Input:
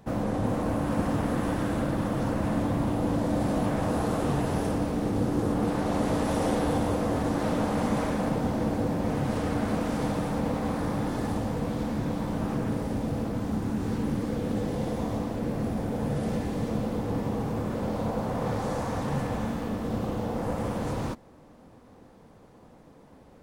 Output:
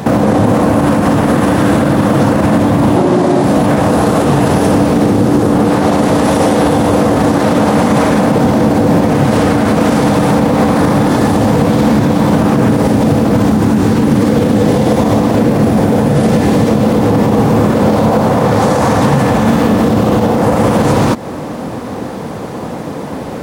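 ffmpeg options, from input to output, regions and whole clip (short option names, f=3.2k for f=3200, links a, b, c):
-filter_complex "[0:a]asettb=1/sr,asplit=3[a][b][c];[a]atrim=end=2.964[d];[b]atrim=start=2.96:end=3.44,asetpts=PTS-STARTPTS,afade=t=in:d=0.004:c=qsin,afade=t=out:st=0.476:d=0.004:c=qsin,lowpass=10k,afreqshift=70[e];[c]atrim=start=3.436[f];[d][e]acrossfade=d=0.004:c1=hsin:c2=qsin[g];[g][f]acrossfade=d=0.004:c1=qsin:c2=hsin,highpass=100,acompressor=threshold=-36dB:ratio=6,alimiter=level_in=32.5dB:limit=-1dB:release=50:level=0:latency=1,volume=-1dB"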